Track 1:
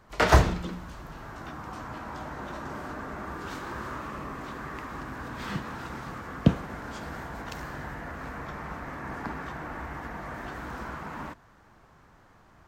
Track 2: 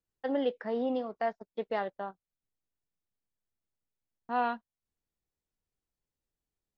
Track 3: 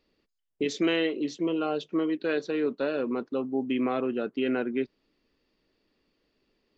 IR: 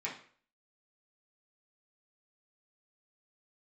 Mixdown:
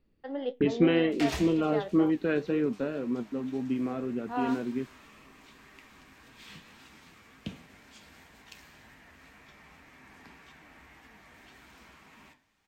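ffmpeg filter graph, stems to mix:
-filter_complex "[0:a]highshelf=f=1.9k:t=q:w=1.5:g=10,bandreject=f=520:w=12,adelay=1000,volume=-20dB,asplit=2[a][b];[b]volume=-7.5dB[c];[1:a]volume=-4.5dB,asplit=2[d][e];[e]volume=-22.5dB[f];[2:a]bass=f=250:g=15,treble=f=4k:g=-13,volume=-2dB,afade=t=out:st=2.43:d=0.64:silence=0.398107[g];[3:a]atrim=start_sample=2205[h];[c][f]amix=inputs=2:normalize=0[i];[i][h]afir=irnorm=-1:irlink=0[j];[a][d][g][j]amix=inputs=4:normalize=0,dynaudnorm=f=100:g=7:m=5dB,flanger=delay=7.2:depth=5.4:regen=66:speed=1.9:shape=triangular"

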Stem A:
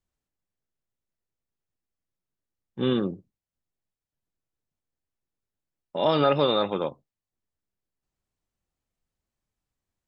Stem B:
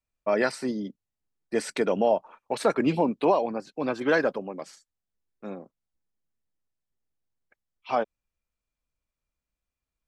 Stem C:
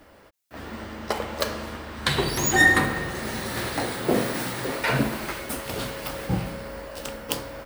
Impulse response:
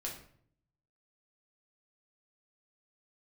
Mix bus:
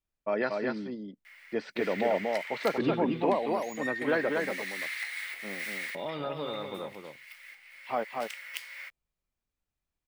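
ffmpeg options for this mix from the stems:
-filter_complex "[0:a]acompressor=threshold=-31dB:ratio=2,volume=-7dB,asplit=3[a][b][c];[b]volume=-6dB[d];[1:a]lowpass=f=4.2k:w=0.5412,lowpass=f=4.2k:w=1.3066,volume=-5.5dB,asplit=2[e][f];[f]volume=-3.5dB[g];[2:a]acompressor=threshold=-35dB:ratio=4,highpass=f=2.1k:t=q:w=7.6,adelay=1250,volume=-3.5dB[h];[c]apad=whole_len=392508[i];[h][i]sidechaincompress=threshold=-50dB:ratio=5:attack=10:release=1360[j];[d][g]amix=inputs=2:normalize=0,aecho=0:1:235:1[k];[a][e][j][k]amix=inputs=4:normalize=0"

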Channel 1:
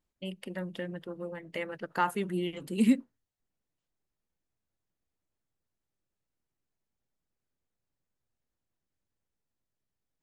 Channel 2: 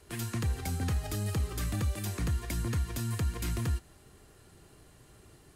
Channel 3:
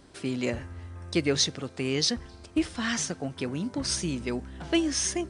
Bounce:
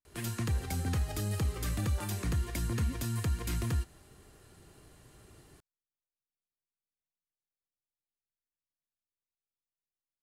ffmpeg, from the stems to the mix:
-filter_complex "[0:a]volume=-19dB[a];[1:a]adelay=50,volume=-0.5dB[b];[a][b]amix=inputs=2:normalize=0"

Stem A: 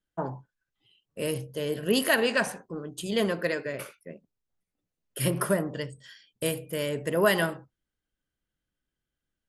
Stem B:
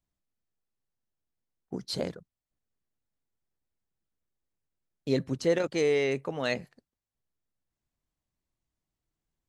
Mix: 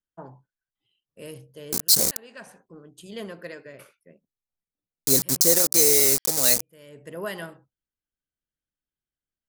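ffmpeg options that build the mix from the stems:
-filter_complex "[0:a]volume=-10dB[a];[1:a]acrusher=bits=5:mix=0:aa=0.000001,aexciter=amount=7.4:drive=8.6:freq=4.5k,volume=0.5dB,asplit=2[b][c];[c]apad=whole_len=418327[d];[a][d]sidechaincompress=threshold=-37dB:ratio=4:attack=16:release=361[e];[e][b]amix=inputs=2:normalize=0"

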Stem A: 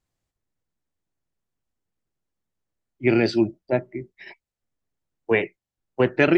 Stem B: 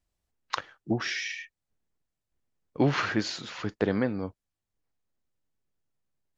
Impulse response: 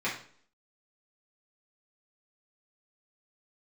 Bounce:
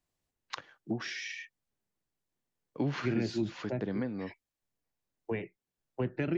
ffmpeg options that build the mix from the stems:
-filter_complex "[0:a]volume=-6.5dB[a];[1:a]highpass=150,bandreject=f=1.3k:w=15,volume=-2.5dB[b];[a][b]amix=inputs=2:normalize=0,acrossover=split=250[c][d];[d]acompressor=threshold=-36dB:ratio=6[e];[c][e]amix=inputs=2:normalize=0"

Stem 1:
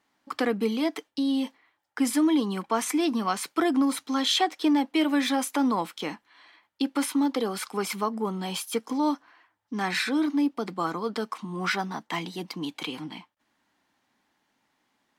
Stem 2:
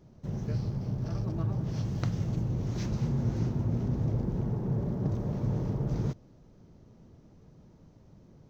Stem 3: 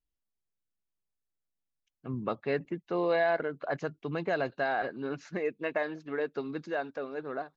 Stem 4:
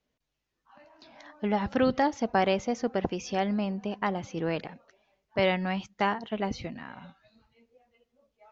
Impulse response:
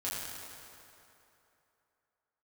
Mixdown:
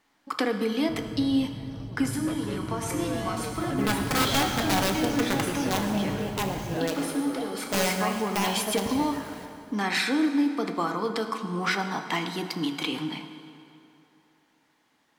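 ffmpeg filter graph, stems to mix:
-filter_complex "[0:a]acompressor=threshold=-27dB:ratio=3,bandreject=f=46.06:t=h:w=4,bandreject=f=92.12:t=h:w=4,bandreject=f=138.18:t=h:w=4,bandreject=f=184.24:t=h:w=4,bandreject=f=230.3:t=h:w=4,bandreject=f=276.36:t=h:w=4,bandreject=f=322.42:t=h:w=4,bandreject=f=368.48:t=h:w=4,bandreject=f=414.54:t=h:w=4,bandreject=f=460.6:t=h:w=4,bandreject=f=506.66:t=h:w=4,bandreject=f=552.72:t=h:w=4,bandreject=f=598.78:t=h:w=4,bandreject=f=644.84:t=h:w=4,bandreject=f=690.9:t=h:w=4,bandreject=f=736.96:t=h:w=4,bandreject=f=783.02:t=h:w=4,bandreject=f=829.08:t=h:w=4,bandreject=f=875.14:t=h:w=4,bandreject=f=921.2:t=h:w=4,bandreject=f=967.26:t=h:w=4,bandreject=f=1.01332k:t=h:w=4,bandreject=f=1.05938k:t=h:w=4,bandreject=f=1.10544k:t=h:w=4,bandreject=f=1.1515k:t=h:w=4,bandreject=f=1.19756k:t=h:w=4,bandreject=f=1.24362k:t=h:w=4,bandreject=f=1.28968k:t=h:w=4,bandreject=f=1.33574k:t=h:w=4,bandreject=f=1.3818k:t=h:w=4,bandreject=f=1.42786k:t=h:w=4,bandreject=f=1.47392k:t=h:w=4,bandreject=f=1.51998k:t=h:w=4,bandreject=f=1.56604k:t=h:w=4,volume=2.5dB,asplit=2[a][b];[b]volume=-9.5dB[c];[1:a]adelay=650,volume=-6.5dB[d];[2:a]asoftclip=type=tanh:threshold=-33dB,volume=-0.5dB,asplit=2[e][f];[3:a]acrusher=bits=7:mix=0:aa=0.000001,aeval=exprs='(mod(8.91*val(0)+1,2)-1)/8.91':c=same,adelay=2350,volume=-3.5dB,asplit=2[g][h];[h]volume=-3.5dB[i];[f]apad=whole_len=669607[j];[a][j]sidechaincompress=threshold=-47dB:ratio=8:attack=16:release=1160[k];[4:a]atrim=start_sample=2205[l];[c][i]amix=inputs=2:normalize=0[m];[m][l]afir=irnorm=-1:irlink=0[n];[k][d][e][g][n]amix=inputs=5:normalize=0"

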